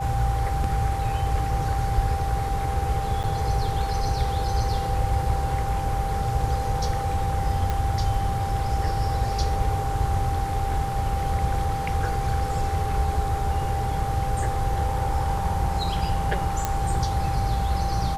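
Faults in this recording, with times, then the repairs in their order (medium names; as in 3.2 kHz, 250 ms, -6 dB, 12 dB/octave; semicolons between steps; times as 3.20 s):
whine 790 Hz -28 dBFS
3.23–3.24 s: dropout 8.2 ms
7.70 s: pop -13 dBFS
16.65 s: pop -9 dBFS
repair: de-click; band-stop 790 Hz, Q 30; interpolate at 3.23 s, 8.2 ms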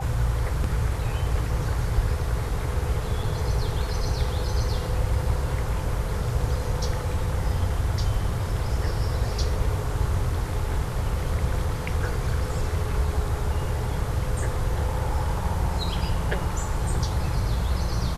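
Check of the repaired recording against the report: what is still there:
nothing left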